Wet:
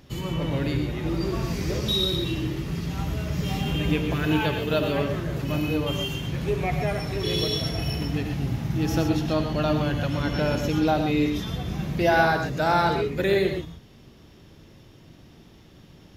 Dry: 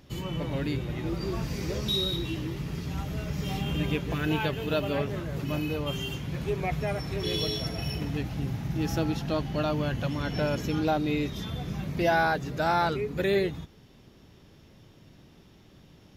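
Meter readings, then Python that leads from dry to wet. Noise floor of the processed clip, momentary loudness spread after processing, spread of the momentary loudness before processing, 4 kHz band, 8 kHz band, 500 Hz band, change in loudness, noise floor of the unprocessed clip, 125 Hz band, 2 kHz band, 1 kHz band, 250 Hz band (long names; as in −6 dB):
−51 dBFS, 7 LU, 7 LU, +4.0 dB, +4.0 dB, +4.0 dB, +4.5 dB, −55 dBFS, +4.5 dB, +4.0 dB, +4.0 dB, +5.0 dB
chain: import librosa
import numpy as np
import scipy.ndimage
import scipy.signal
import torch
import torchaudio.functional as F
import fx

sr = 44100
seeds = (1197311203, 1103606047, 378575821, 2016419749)

y = fx.rev_gated(x, sr, seeds[0], gate_ms=150, shape='rising', drr_db=5.5)
y = F.gain(torch.from_numpy(y), 3.0).numpy()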